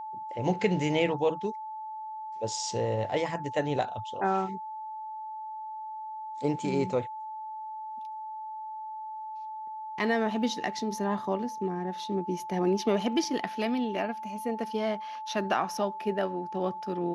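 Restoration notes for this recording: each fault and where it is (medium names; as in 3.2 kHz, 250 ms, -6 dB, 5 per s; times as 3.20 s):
whine 870 Hz -36 dBFS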